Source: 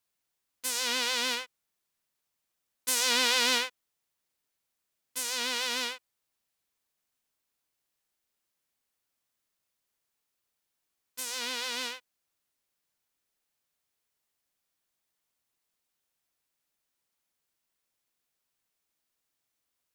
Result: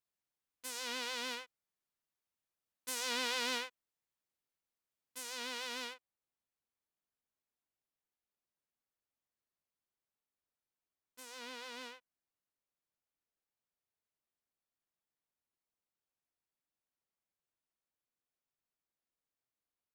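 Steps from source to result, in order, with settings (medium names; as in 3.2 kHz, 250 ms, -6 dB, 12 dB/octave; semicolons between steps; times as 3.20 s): treble shelf 2.2 kHz -5.5 dB, from 5.94 s -11 dB; trim -7.5 dB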